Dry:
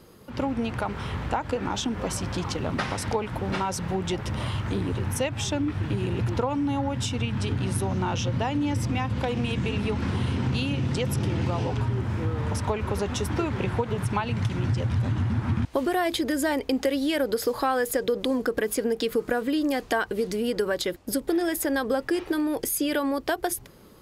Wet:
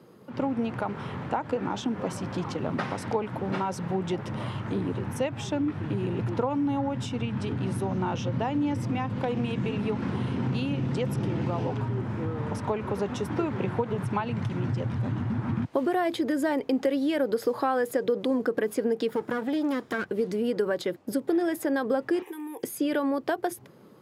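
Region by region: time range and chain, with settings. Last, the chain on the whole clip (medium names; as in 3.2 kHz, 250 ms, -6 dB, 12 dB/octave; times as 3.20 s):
19.09–20.09 s: comb filter that takes the minimum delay 0.57 ms + hum notches 60/120/180 Hz + overload inside the chain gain 21.5 dB
22.22–22.63 s: RIAA curve recording + static phaser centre 920 Hz, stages 8 + compression 3:1, threshold -34 dBFS
whole clip: high-pass 120 Hz 24 dB/octave; treble shelf 2.4 kHz -11.5 dB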